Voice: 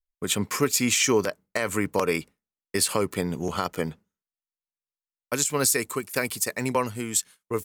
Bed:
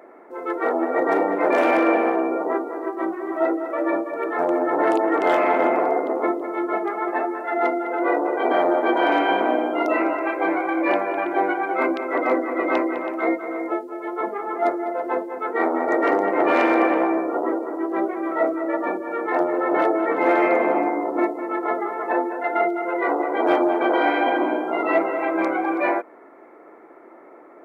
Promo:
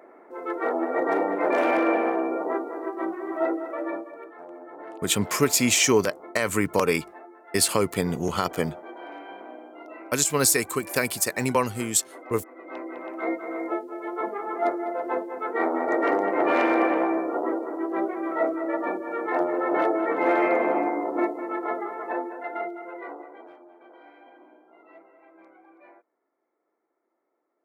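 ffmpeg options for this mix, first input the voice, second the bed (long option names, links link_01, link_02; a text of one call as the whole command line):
ffmpeg -i stem1.wav -i stem2.wav -filter_complex "[0:a]adelay=4800,volume=2dB[link_01];[1:a]volume=14dB,afade=type=out:start_time=3.51:duration=0.83:silence=0.133352,afade=type=in:start_time=12.64:duration=0.95:silence=0.125893,afade=type=out:start_time=21.29:duration=2.23:silence=0.0398107[link_02];[link_01][link_02]amix=inputs=2:normalize=0" out.wav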